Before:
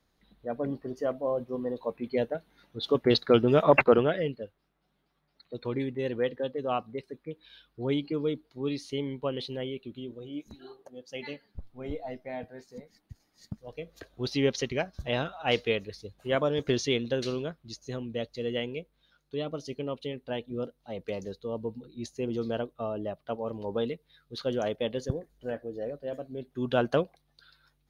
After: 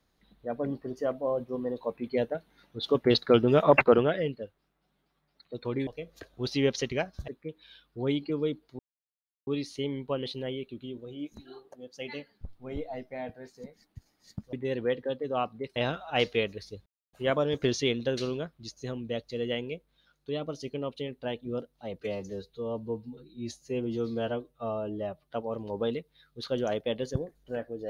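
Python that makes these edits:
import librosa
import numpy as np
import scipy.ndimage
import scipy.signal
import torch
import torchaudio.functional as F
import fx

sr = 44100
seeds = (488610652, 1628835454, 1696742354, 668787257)

y = fx.edit(x, sr, fx.swap(start_s=5.87, length_s=1.23, other_s=13.67, other_length_s=1.41),
    fx.insert_silence(at_s=8.61, length_s=0.68),
    fx.insert_silence(at_s=16.18, length_s=0.27),
    fx.stretch_span(start_s=21.06, length_s=2.21, factor=1.5), tone=tone)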